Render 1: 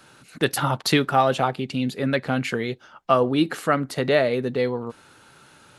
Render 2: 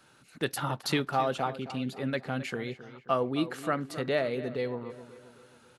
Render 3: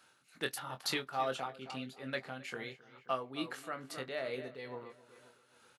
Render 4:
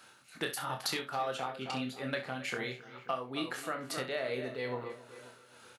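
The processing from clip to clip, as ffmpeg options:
-filter_complex "[0:a]asplit=2[s0][s1];[s1]adelay=267,lowpass=f=3100:p=1,volume=0.2,asplit=2[s2][s3];[s3]adelay=267,lowpass=f=3100:p=1,volume=0.48,asplit=2[s4][s5];[s5]adelay=267,lowpass=f=3100:p=1,volume=0.48,asplit=2[s6][s7];[s7]adelay=267,lowpass=f=3100:p=1,volume=0.48,asplit=2[s8][s9];[s9]adelay=267,lowpass=f=3100:p=1,volume=0.48[s10];[s0][s2][s4][s6][s8][s10]amix=inputs=6:normalize=0,volume=0.355"
-filter_complex "[0:a]lowshelf=f=440:g=-11.5,tremolo=f=2.3:d=0.57,asplit=2[s0][s1];[s1]adelay=23,volume=0.398[s2];[s0][s2]amix=inputs=2:normalize=0,volume=0.75"
-filter_complex "[0:a]acompressor=threshold=0.01:ratio=5,asplit=2[s0][s1];[s1]aecho=0:1:32|66:0.376|0.251[s2];[s0][s2]amix=inputs=2:normalize=0,volume=2.37"

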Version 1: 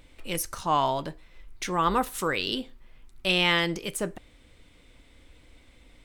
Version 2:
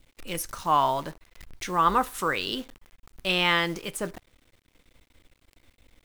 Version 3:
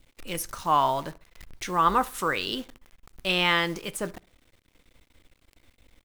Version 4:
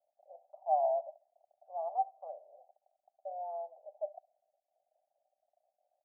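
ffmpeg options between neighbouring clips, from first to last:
-af "adynamicequalizer=threshold=0.0126:dfrequency=1200:dqfactor=1.1:tfrequency=1200:tqfactor=1.1:attack=5:release=100:ratio=0.375:range=3:mode=boostabove:tftype=bell,acrusher=bits=8:dc=4:mix=0:aa=0.000001,volume=0.794"
-filter_complex "[0:a]asplit=2[s0][s1];[s1]adelay=67,lowpass=f=2000:p=1,volume=0.0708,asplit=2[s2][s3];[s3]adelay=67,lowpass=f=2000:p=1,volume=0.4,asplit=2[s4][s5];[s5]adelay=67,lowpass=f=2000:p=1,volume=0.4[s6];[s0][s2][s4][s6]amix=inputs=4:normalize=0"
-af "asuperpass=centerf=680:order=8:qfactor=3.4"

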